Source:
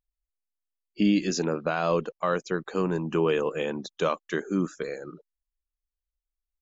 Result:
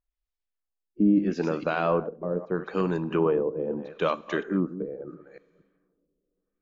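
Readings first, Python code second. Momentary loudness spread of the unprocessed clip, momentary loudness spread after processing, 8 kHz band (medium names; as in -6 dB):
8 LU, 9 LU, no reading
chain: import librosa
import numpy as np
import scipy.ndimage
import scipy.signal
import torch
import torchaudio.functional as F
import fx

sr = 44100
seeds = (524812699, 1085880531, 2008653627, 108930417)

y = fx.reverse_delay(x, sr, ms=234, wet_db=-12.5)
y = fx.rev_double_slope(y, sr, seeds[0], early_s=0.46, late_s=3.2, knee_db=-18, drr_db=16.5)
y = fx.filter_lfo_lowpass(y, sr, shape='sine', hz=0.77, low_hz=420.0, high_hz=4800.0, q=1.0)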